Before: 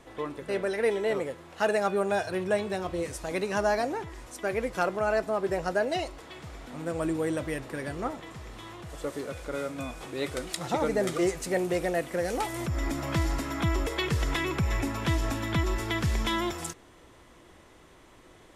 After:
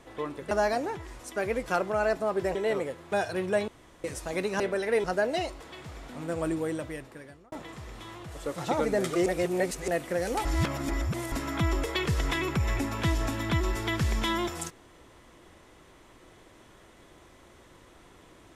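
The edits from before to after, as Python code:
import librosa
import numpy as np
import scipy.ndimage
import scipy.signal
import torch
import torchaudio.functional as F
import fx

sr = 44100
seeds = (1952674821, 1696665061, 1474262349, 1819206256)

y = fx.edit(x, sr, fx.swap(start_s=0.51, length_s=0.44, other_s=3.58, other_length_s=2.04),
    fx.cut(start_s=1.52, length_s=0.58),
    fx.room_tone_fill(start_s=2.66, length_s=0.36),
    fx.fade_out_span(start_s=7.01, length_s=1.09),
    fx.cut(start_s=9.14, length_s=1.45),
    fx.reverse_span(start_s=11.29, length_s=0.62),
    fx.reverse_span(start_s=12.48, length_s=0.87), tone=tone)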